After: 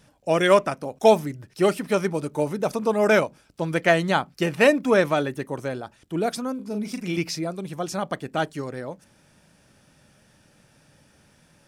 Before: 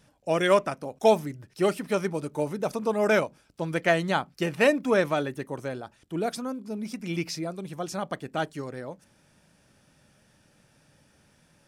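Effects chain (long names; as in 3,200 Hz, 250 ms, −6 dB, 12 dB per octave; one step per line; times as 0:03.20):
0:06.55–0:07.18: double-tracking delay 39 ms −6.5 dB
level +4 dB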